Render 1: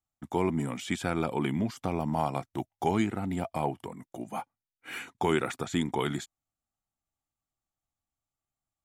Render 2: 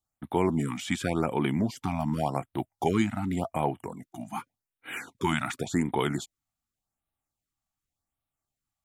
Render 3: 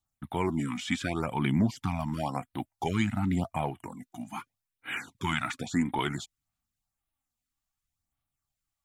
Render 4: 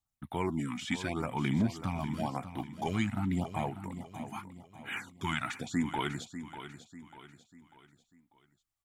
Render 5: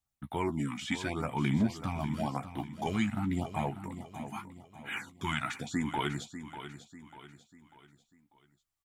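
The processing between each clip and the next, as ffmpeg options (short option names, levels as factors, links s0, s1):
-af "afftfilt=real='re*(1-between(b*sr/1024,400*pow(6200/400,0.5+0.5*sin(2*PI*0.88*pts/sr))/1.41,400*pow(6200/400,0.5+0.5*sin(2*PI*0.88*pts/sr))*1.41))':imag='im*(1-between(b*sr/1024,400*pow(6200/400,0.5+0.5*sin(2*PI*0.88*pts/sr))/1.41,400*pow(6200/400,0.5+0.5*sin(2*PI*0.88*pts/sr))*1.41))':win_size=1024:overlap=0.75,volume=1.33"
-filter_complex "[0:a]acrossover=split=7300[s0][s1];[s1]acompressor=threshold=0.00158:ratio=4:attack=1:release=60[s2];[s0][s2]amix=inputs=2:normalize=0,aphaser=in_gain=1:out_gain=1:delay=4.1:decay=0.4:speed=0.61:type=sinusoidal,equalizer=f=460:t=o:w=1.3:g=-8.5"
-af "aecho=1:1:594|1188|1782|2376:0.266|0.112|0.0469|0.0197,volume=0.668"
-filter_complex "[0:a]asplit=2[s0][s1];[s1]adelay=14,volume=0.355[s2];[s0][s2]amix=inputs=2:normalize=0"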